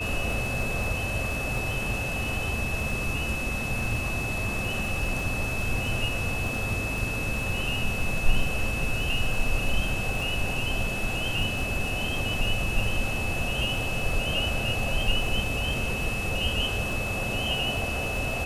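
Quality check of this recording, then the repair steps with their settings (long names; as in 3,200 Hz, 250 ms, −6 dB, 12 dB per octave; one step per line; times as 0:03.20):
surface crackle 38 per second −34 dBFS
whistle 2,600 Hz −31 dBFS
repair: click removal
notch filter 2,600 Hz, Q 30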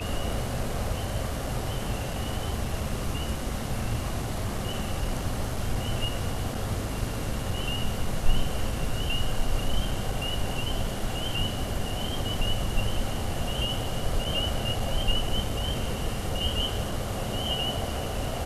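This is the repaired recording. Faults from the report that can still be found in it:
none of them is left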